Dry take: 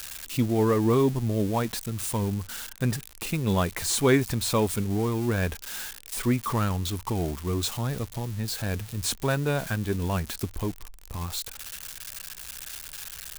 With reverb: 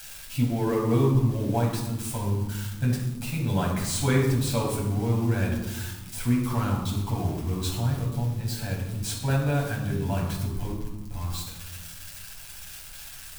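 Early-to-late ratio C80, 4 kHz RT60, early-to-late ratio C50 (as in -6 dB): 7.0 dB, 0.65 s, 4.0 dB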